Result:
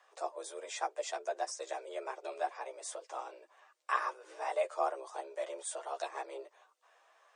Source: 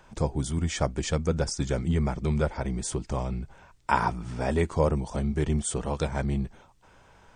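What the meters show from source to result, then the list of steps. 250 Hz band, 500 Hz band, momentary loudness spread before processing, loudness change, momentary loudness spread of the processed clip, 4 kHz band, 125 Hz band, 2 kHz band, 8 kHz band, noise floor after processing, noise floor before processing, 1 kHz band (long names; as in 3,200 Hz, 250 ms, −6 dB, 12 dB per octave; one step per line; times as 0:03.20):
−27.5 dB, −8.0 dB, 6 LU, −10.5 dB, 10 LU, −9.5 dB, below −40 dB, −6.5 dB, −9.0 dB, −69 dBFS, −57 dBFS, −5.0 dB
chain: multi-voice chorus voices 6, 0.93 Hz, delay 11 ms, depth 4.3 ms
four-pole ladder high-pass 270 Hz, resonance 25%
frequency shifter +200 Hz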